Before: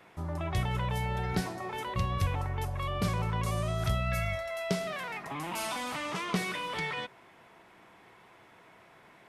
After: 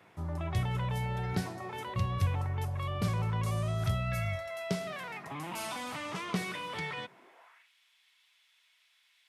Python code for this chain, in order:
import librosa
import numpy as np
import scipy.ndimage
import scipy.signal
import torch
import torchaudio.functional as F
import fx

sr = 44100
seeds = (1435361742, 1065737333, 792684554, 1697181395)

y = fx.filter_sweep_highpass(x, sr, from_hz=91.0, to_hz=3500.0, start_s=7.02, end_s=7.71, q=1.8)
y = F.gain(torch.from_numpy(y), -3.5).numpy()